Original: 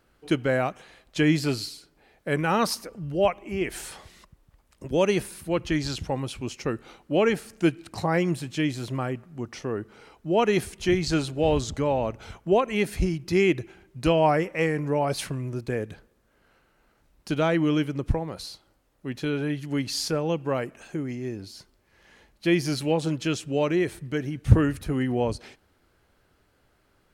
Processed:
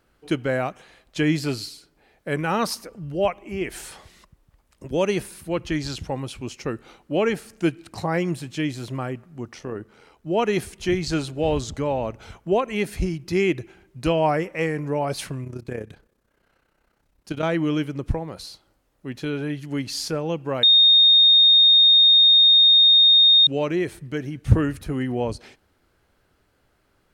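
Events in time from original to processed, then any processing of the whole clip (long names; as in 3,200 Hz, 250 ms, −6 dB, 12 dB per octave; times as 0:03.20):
0:09.53–0:10.27: amplitude modulation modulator 83 Hz, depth 30%
0:15.44–0:17.43: amplitude modulation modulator 32 Hz, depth 55%
0:20.63–0:23.47: beep over 3,690 Hz −10.5 dBFS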